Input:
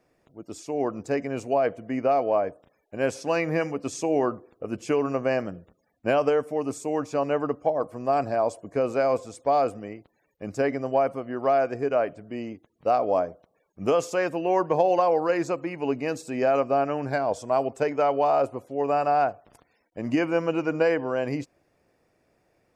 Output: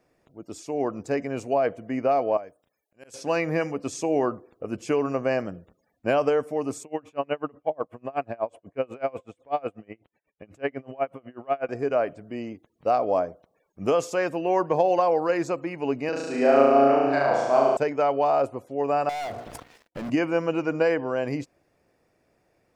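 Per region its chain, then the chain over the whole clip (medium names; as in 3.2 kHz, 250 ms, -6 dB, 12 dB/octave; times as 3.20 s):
2.37–3.14 s: pre-emphasis filter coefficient 0.8 + slow attack 215 ms
6.83–11.69 s: resonant high shelf 3.8 kHz -8 dB, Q 3 + logarithmic tremolo 8.1 Hz, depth 29 dB
16.09–17.77 s: three-band isolator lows -13 dB, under 190 Hz, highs -19 dB, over 6.5 kHz + flutter echo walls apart 6.2 m, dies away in 1.4 s
19.09–20.10 s: hum notches 60/120/180/240/300/360/420/480/540 Hz + compression 2.5:1, threshold -43 dBFS + waveshaping leveller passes 5
whole clip: none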